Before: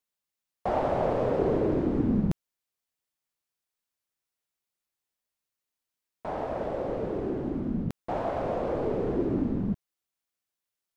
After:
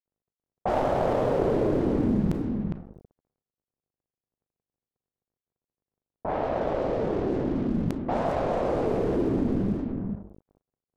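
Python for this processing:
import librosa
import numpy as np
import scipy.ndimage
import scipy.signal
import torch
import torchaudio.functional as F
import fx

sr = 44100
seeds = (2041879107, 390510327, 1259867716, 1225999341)

p1 = fx.tracing_dist(x, sr, depth_ms=0.2)
p2 = fx.rev_schroeder(p1, sr, rt60_s=0.7, comb_ms=27, drr_db=15.5)
p3 = fx.add_hum(p2, sr, base_hz=50, snr_db=24)
p4 = np.sign(p3) * np.maximum(np.abs(p3) - 10.0 ** (-49.5 / 20.0), 0.0)
p5 = p4 + fx.echo_single(p4, sr, ms=408, db=-10.0, dry=0)
p6 = fx.env_lowpass(p5, sr, base_hz=530.0, full_db=-24.5)
y = fx.env_flatten(p6, sr, amount_pct=50)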